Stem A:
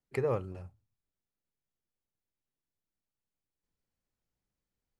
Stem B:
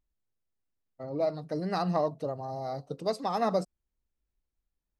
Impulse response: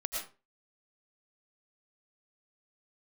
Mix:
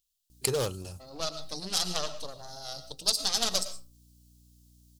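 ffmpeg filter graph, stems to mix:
-filter_complex "[0:a]aeval=exprs='val(0)+0.001*(sin(2*PI*60*n/s)+sin(2*PI*2*60*n/s)/2+sin(2*PI*3*60*n/s)/3+sin(2*PI*4*60*n/s)/4+sin(2*PI*5*60*n/s)/5)':c=same,volume=20,asoftclip=hard,volume=0.0501,adelay=300,volume=1.26[s0];[1:a]equalizer=f=2700:w=1.2:g=9,aeval=exprs='0.158*(cos(1*acos(clip(val(0)/0.158,-1,1)))-cos(1*PI/2))+0.0631*(cos(4*acos(clip(val(0)/0.158,-1,1)))-cos(4*PI/2))':c=same,volume=0.237,asplit=3[s1][s2][s3];[s2]volume=0.282[s4];[s3]apad=whole_len=233646[s5];[s0][s5]sidechaincompress=threshold=0.00251:ratio=8:attack=16:release=111[s6];[2:a]atrim=start_sample=2205[s7];[s4][s7]afir=irnorm=-1:irlink=0[s8];[s6][s1][s8]amix=inputs=3:normalize=0,aexciter=amount=14.5:drive=3.9:freq=3200"

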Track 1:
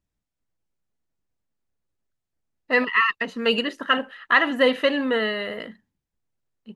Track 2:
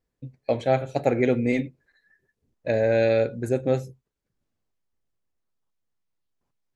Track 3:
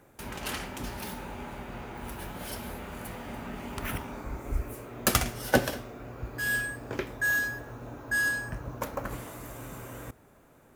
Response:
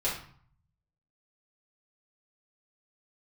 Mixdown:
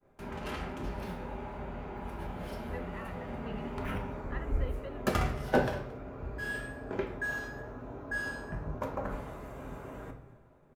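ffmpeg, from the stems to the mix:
-filter_complex "[0:a]volume=0.106[s0];[2:a]asoftclip=type=hard:threshold=0.178,volume=1.06,asplit=3[s1][s2][s3];[s2]volume=0.447[s4];[s3]volume=0.126[s5];[3:a]atrim=start_sample=2205[s6];[s4][s6]afir=irnorm=-1:irlink=0[s7];[s5]aecho=0:1:225:1[s8];[s0][s1][s7][s8]amix=inputs=4:normalize=0,agate=range=0.0224:threshold=0.00398:ratio=3:detection=peak,lowpass=f=1200:p=1,flanger=delay=9.9:depth=4.6:regen=78:speed=1:shape=triangular"

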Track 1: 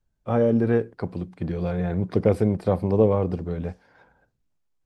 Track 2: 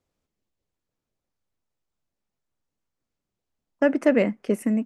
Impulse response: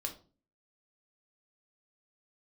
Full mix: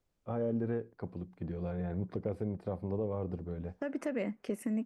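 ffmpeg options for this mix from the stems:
-filter_complex "[0:a]highshelf=f=2600:g=-9.5,volume=0.299[s0];[1:a]acompressor=threshold=0.0891:ratio=4,volume=0.668[s1];[s0][s1]amix=inputs=2:normalize=0,alimiter=limit=0.0631:level=0:latency=1:release=330"

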